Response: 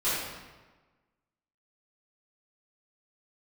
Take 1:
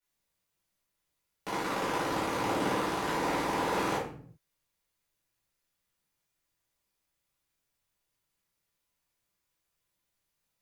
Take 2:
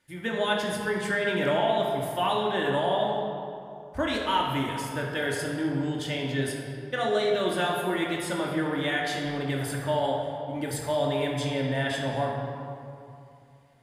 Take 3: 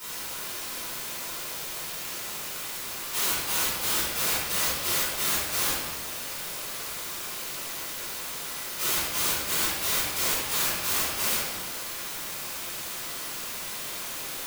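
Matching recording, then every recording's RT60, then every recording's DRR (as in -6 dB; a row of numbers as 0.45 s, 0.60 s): 3; 0.50 s, 2.7 s, 1.3 s; -12.0 dB, -3.0 dB, -14.0 dB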